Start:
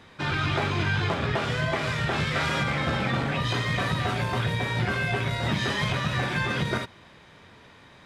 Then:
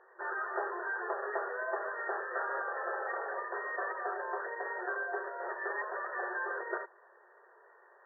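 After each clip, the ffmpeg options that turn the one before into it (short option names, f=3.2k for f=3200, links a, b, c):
-af "afftfilt=real='re*between(b*sr/4096,350,1900)':imag='im*between(b*sr/4096,350,1900)':win_size=4096:overlap=0.75,volume=-6dB"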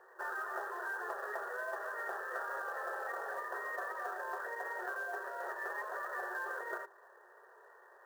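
-filter_complex "[0:a]acrossover=split=410|1500[a][b][c];[a]acompressor=threshold=-59dB:ratio=4[d];[b]acompressor=threshold=-42dB:ratio=4[e];[c]acompressor=threshold=-46dB:ratio=4[f];[d][e][f]amix=inputs=3:normalize=0,acrusher=bits=5:mode=log:mix=0:aa=0.000001,bandreject=f=50:t=h:w=6,bandreject=f=100:t=h:w=6,bandreject=f=150:t=h:w=6,bandreject=f=200:t=h:w=6,bandreject=f=250:t=h:w=6,bandreject=f=300:t=h:w=6,bandreject=f=350:t=h:w=6,bandreject=f=400:t=h:w=6,volume=1dB"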